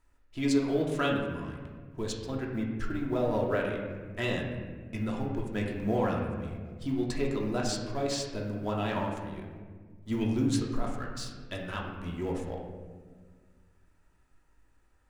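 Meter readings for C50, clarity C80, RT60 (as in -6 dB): 3.0 dB, 5.5 dB, 1.6 s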